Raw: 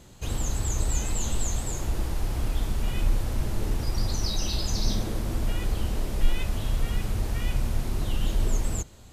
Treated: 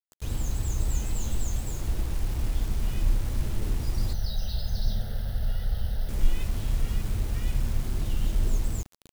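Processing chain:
low-shelf EQ 310 Hz +7.5 dB
bit reduction 6 bits
0:04.13–0:06.09: phaser with its sweep stopped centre 1,600 Hz, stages 8
level −7.5 dB

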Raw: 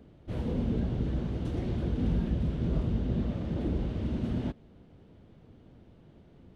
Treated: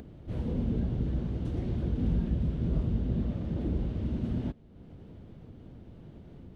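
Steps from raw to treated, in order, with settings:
low-shelf EQ 350 Hz +6 dB
upward compression, threshold −34 dBFS
level −5 dB

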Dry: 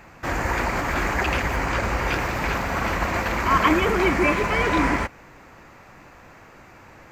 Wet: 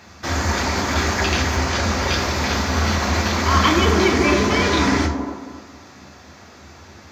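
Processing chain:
high-pass filter 88 Hz
flat-topped bell 4,600 Hz +10.5 dB 1.2 octaves
delay with a band-pass on its return 271 ms, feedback 31%, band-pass 480 Hz, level −4.5 dB
on a send at −4 dB: convolution reverb RT60 0.45 s, pre-delay 3 ms

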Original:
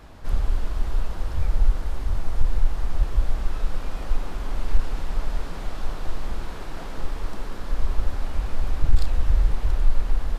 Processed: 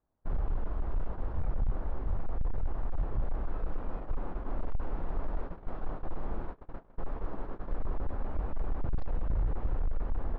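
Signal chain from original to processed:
low-pass filter 1,100 Hz 12 dB per octave
low-shelf EQ 120 Hz −5.5 dB
feedback echo with a band-pass in the loop 696 ms, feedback 68%, band-pass 350 Hz, level −8 dB
hard clipping −22 dBFS, distortion −8 dB
noise gate −31 dBFS, range −31 dB
level −2 dB

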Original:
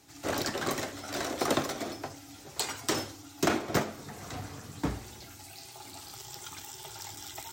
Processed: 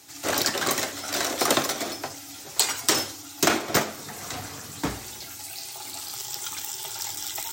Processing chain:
spectral tilt +2 dB per octave
level +6 dB

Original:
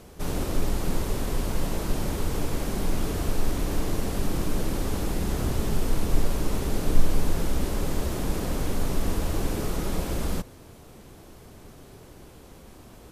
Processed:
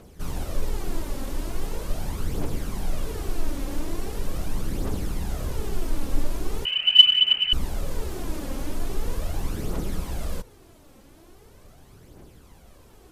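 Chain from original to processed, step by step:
0:06.65–0:07.53: voice inversion scrambler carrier 3,000 Hz
phase shifter 0.41 Hz, delay 3.8 ms, feedback 48%
level −5 dB

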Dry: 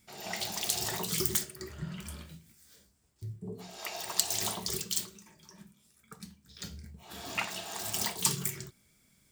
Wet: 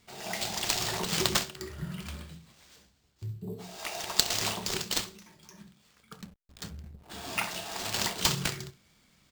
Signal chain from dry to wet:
ambience of single reflections 29 ms −14.5 dB, 66 ms −16.5 dB
sample-rate reduction 12,000 Hz, jitter 0%
0:06.21–0:07.10: slack as between gear wheels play −45 dBFS
level +2 dB

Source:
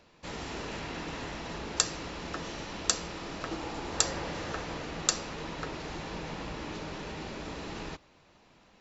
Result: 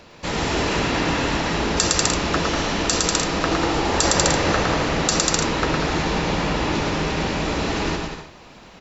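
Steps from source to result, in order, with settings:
on a send: bouncing-ball delay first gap 110 ms, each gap 0.75×, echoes 5
on the sum: boost into a limiter +15.5 dB
level −1 dB

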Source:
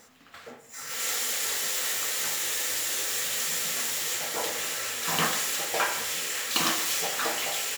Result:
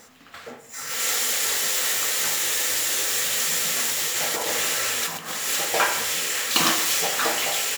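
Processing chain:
0:03.89–0:05.50: compressor whose output falls as the input rises −31 dBFS, ratio −0.5
level +5.5 dB

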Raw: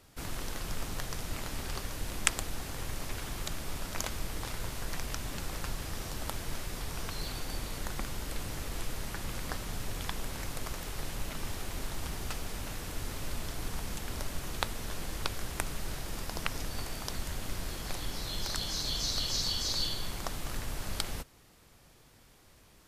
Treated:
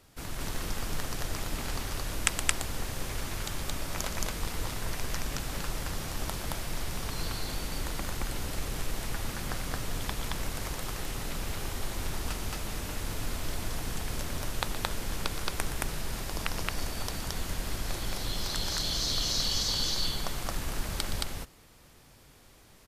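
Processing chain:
loudspeakers that aren't time-aligned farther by 41 metres −12 dB, 76 metres 0 dB

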